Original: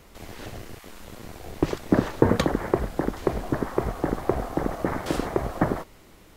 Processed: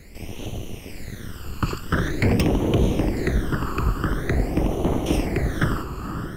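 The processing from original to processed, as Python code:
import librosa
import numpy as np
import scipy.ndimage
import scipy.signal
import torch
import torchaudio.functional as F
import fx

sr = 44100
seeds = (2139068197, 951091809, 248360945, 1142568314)

y = fx.echo_diffused(x, sr, ms=514, feedback_pct=43, wet_db=-8)
y = 10.0 ** (-17.0 / 20.0) * (np.abs((y / 10.0 ** (-17.0 / 20.0) + 3.0) % 4.0 - 2.0) - 1.0)
y = fx.phaser_stages(y, sr, stages=12, low_hz=630.0, high_hz=1600.0, hz=0.46, feedback_pct=45)
y = F.gain(torch.from_numpy(y), 6.0).numpy()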